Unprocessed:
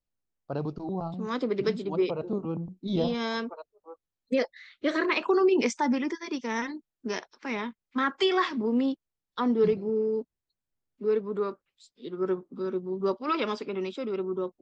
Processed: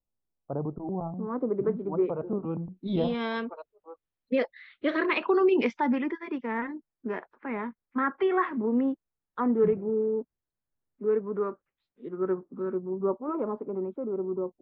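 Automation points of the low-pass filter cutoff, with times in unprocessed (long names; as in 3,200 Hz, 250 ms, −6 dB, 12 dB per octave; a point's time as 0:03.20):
low-pass filter 24 dB per octave
0:01.48 1,100 Hz
0:02.23 1,700 Hz
0:02.82 3,400 Hz
0:05.65 3,400 Hz
0:06.72 1,900 Hz
0:12.67 1,900 Hz
0:13.27 1,000 Hz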